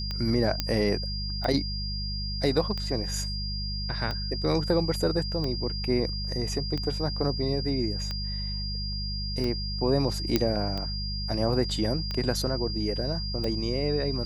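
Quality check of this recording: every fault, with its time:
hum 50 Hz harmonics 4 -33 dBFS
tick 45 rpm -19 dBFS
whine 4.8 kHz -34 dBFS
0.60 s: pop -10 dBFS
10.36 s: pop -8 dBFS

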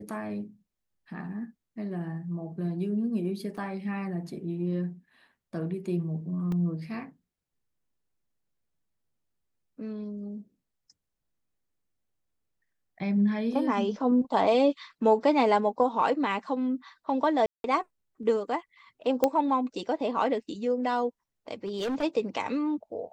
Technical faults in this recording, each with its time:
3.57–3.58 s: dropout 6.3 ms
6.52 s: dropout 2.2 ms
17.46–17.64 s: dropout 182 ms
19.24 s: pop -10 dBFS
21.64–22.04 s: clipped -27 dBFS

